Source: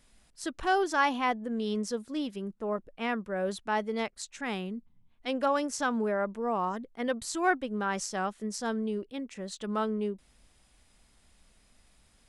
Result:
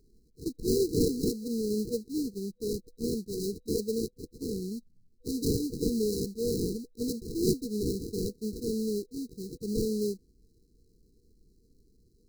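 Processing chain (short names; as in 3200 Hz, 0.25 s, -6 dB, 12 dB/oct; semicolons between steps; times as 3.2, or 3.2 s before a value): sample-rate reducer 1300 Hz, jitter 20%; FFT band-reject 490–3900 Hz; dynamic EQ 750 Hz, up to +7 dB, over -48 dBFS, Q 0.77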